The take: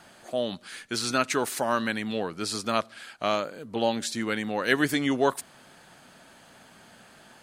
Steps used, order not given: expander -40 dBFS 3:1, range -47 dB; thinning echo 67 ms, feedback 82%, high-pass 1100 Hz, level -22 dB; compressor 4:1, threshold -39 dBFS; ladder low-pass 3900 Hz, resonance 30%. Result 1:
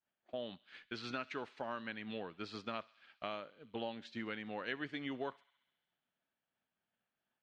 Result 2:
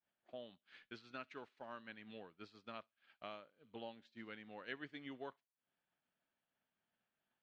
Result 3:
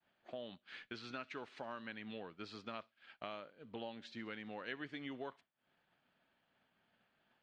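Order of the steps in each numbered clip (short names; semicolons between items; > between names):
ladder low-pass > compressor > expander > thinning echo; thinning echo > compressor > ladder low-pass > expander; compressor > thinning echo > expander > ladder low-pass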